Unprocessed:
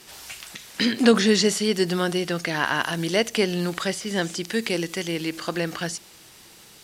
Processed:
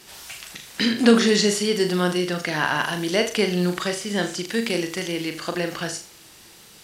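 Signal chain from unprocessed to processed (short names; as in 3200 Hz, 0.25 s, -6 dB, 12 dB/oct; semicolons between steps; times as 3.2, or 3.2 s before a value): wow and flutter 21 cents; on a send: flutter echo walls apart 6.7 m, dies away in 0.34 s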